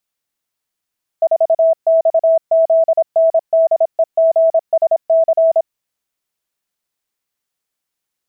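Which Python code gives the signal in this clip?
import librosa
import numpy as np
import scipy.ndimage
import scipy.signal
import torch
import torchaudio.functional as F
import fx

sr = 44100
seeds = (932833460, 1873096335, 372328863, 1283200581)

y = fx.morse(sr, text='4XZNDEGSC', wpm=26, hz=653.0, level_db=-8.0)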